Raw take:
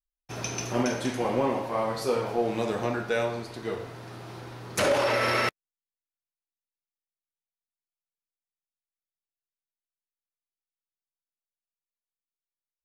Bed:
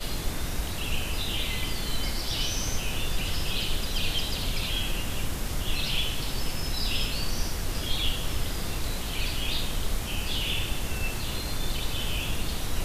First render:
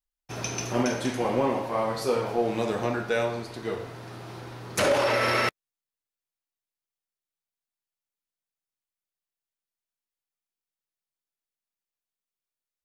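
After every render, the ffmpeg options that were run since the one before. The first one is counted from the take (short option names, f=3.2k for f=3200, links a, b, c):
-af "volume=1dB"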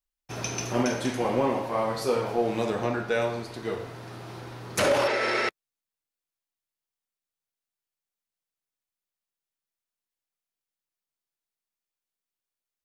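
-filter_complex "[0:a]asettb=1/sr,asplit=3[a][b][c];[a]atrim=end=2.704[d];[b]atrim=start=2.7:end=3.22,asetpts=PTS-STARTPTS,afade=t=in:d=0.004:c=qsin,afade=t=out:st=0.516:d=0.004:c=qsin,highshelf=f=5.7k:g=-4.5[e];[c]atrim=start=3.216[f];[d][e]acrossfade=d=0.004:c1=hsin:c2=qsin[g];[g][f]acrossfade=d=0.004:c1=qsin:c2=hsin,asplit=3[h][i][j];[h]afade=t=out:st=5.07:d=0.02[k];[i]highpass=250,equalizer=f=270:t=q:w=4:g=-5,equalizer=f=390:t=q:w=4:g=5,equalizer=f=590:t=q:w=4:g=-4,equalizer=f=1.1k:t=q:w=4:g=-8,equalizer=f=2.9k:t=q:w=4:g=-4,equalizer=f=5.7k:t=q:w=4:g=-4,lowpass=f=8.3k:w=0.5412,lowpass=f=8.3k:w=1.3066,afade=t=in:st=5.07:d=0.02,afade=t=out:st=5.48:d=0.02[l];[j]afade=t=in:st=5.48:d=0.02[m];[k][l][m]amix=inputs=3:normalize=0"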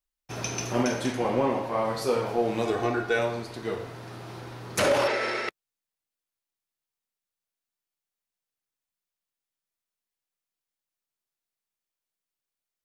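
-filter_complex "[0:a]asettb=1/sr,asplit=3[a][b][c];[a]atrim=end=1.124[d];[b]atrim=start=1.12:end=1.85,asetpts=PTS-STARTPTS,afade=t=in:d=0.004:c=qsin,afade=t=out:st=0.726:d=0.004:c=qsin,highshelf=f=6k:g=-5[e];[c]atrim=start=1.846[f];[d][e]acrossfade=d=0.004:c1=hsin:c2=qsin[g];[g][f]acrossfade=d=0.004:c1=qsin:c2=hsin,asettb=1/sr,asplit=3[h][i][j];[h]atrim=end=2.654[k];[i]atrim=start=2.65:end=3.19,asetpts=PTS-STARTPTS,afade=t=in:d=0.004:c=qsin,afade=t=out:st=0.536:d=0.004:c=qsin,aecho=1:1:2.7:0.65,atrim=end_sample=23814[l];[j]atrim=start=3.186[m];[k][l]acrossfade=d=0.004:c1=hsin:c2=qsin[n];[n][m]acrossfade=d=0.004:c1=qsin:c2=hsin,asplit=2[o][p];[o]atrim=end=5.48,asetpts=PTS-STARTPTS,afade=t=out:st=5.07:d=0.41:silence=0.473151[q];[p]atrim=start=5.48,asetpts=PTS-STARTPTS,afade=t=in:d=0.004:c=hsin:silence=0.473151[r];[q][r]concat=n=2:v=0:a=1"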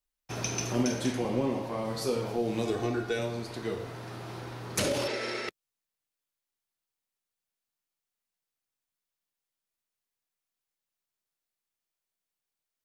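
-filter_complex "[0:a]acrossover=split=410|3000[a][b][c];[b]acompressor=threshold=-38dB:ratio=4[d];[a][d][c]amix=inputs=3:normalize=0"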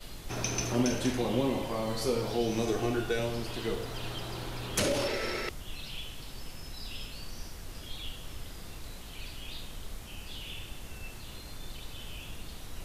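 -filter_complex "[1:a]volume=-13dB[a];[0:a][a]amix=inputs=2:normalize=0"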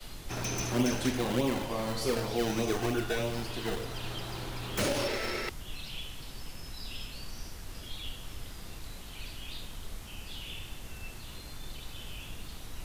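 -filter_complex "[0:a]acrossover=split=110|490|2400[a][b][c][d];[b]acrusher=samples=27:mix=1:aa=0.000001:lfo=1:lforange=27:lforate=3.3[e];[d]aeval=exprs='0.0316*(abs(mod(val(0)/0.0316+3,4)-2)-1)':c=same[f];[a][e][c][f]amix=inputs=4:normalize=0"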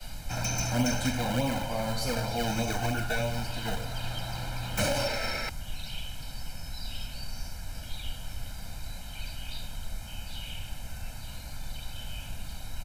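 -af "bandreject=f=3.3k:w=11,aecho=1:1:1.3:0.92"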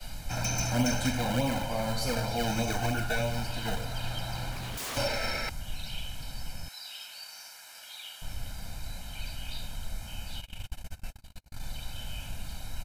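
-filter_complex "[0:a]asettb=1/sr,asplit=3[a][b][c];[a]atrim=end=4.514[d];[b]atrim=start=4.51:end=4.97,asetpts=PTS-STARTPTS,afade=t=in:d=0.004:c=qsin,afade=t=out:st=0.456:d=0.004:c=qsin,aeval=exprs='0.0266*(abs(mod(val(0)/0.0266+3,4)-2)-1)':c=same[e];[c]atrim=start=4.966[f];[d][e]acrossfade=d=0.004:c1=hsin:c2=qsin[g];[g][f]acrossfade=d=0.004:c1=qsin:c2=hsin,asettb=1/sr,asplit=3[h][i][j];[h]atrim=end=6.684[k];[i]atrim=start=6.68:end=8.22,asetpts=PTS-STARTPTS,afade=t=in:d=0.004:c=qsin,afade=t=out:st=1.536:d=0.004:c=qsin,highpass=960[l];[j]atrim=start=8.216[m];[k][l]acrossfade=d=0.004:c1=hsin:c2=qsin[n];[n][m]acrossfade=d=0.004:c1=qsin:c2=hsin,asplit=3[o][p][q];[o]afade=t=out:st=10.4:d=0.02[r];[p]agate=range=-44dB:threshold=-36dB:ratio=16:release=100:detection=peak,afade=t=in:st=10.4:d=0.02,afade=t=out:st=11.59:d=0.02[s];[q]afade=t=in:st=11.59:d=0.02[t];[r][s][t]amix=inputs=3:normalize=0"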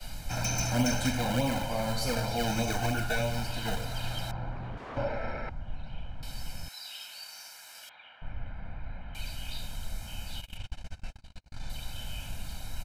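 -filter_complex "[0:a]asettb=1/sr,asplit=3[a][b][c];[a]atrim=end=4.314[d];[b]atrim=start=4.31:end=6.23,asetpts=PTS-STARTPTS,afade=t=in:d=0.004:c=qsin,afade=t=out:st=1.916:d=0.004:c=qsin,lowpass=1.3k[e];[c]atrim=start=6.226[f];[d][e]acrossfade=d=0.004:c1=hsin:c2=qsin[g];[g][f]acrossfade=d=0.004:c1=qsin:c2=hsin,asettb=1/sr,asplit=3[h][i][j];[h]atrim=end=7.894[k];[i]atrim=start=7.89:end=9.15,asetpts=PTS-STARTPTS,afade=t=in:d=0.004:c=qsin,afade=t=out:st=1.256:d=0.004:c=qsin,lowpass=f=2.2k:w=0.5412,lowpass=f=2.2k:w=1.3066[l];[j]atrim=start=9.146[m];[k][l]acrossfade=d=0.004:c1=hsin:c2=qsin[n];[n][m]acrossfade=d=0.004:c1=qsin:c2=hsin,asettb=1/sr,asplit=3[o][p][q];[o]atrim=end=10.574[r];[p]atrim=start=10.57:end=11.7,asetpts=PTS-STARTPTS,afade=t=in:d=0.004:c=qsin,afade=t=out:st=1.126:d=0.004:c=qsin,lowpass=5.9k[s];[q]atrim=start=11.696[t];[r][s]acrossfade=d=0.004:c1=hsin:c2=qsin[u];[u][t]acrossfade=d=0.004:c1=qsin:c2=hsin"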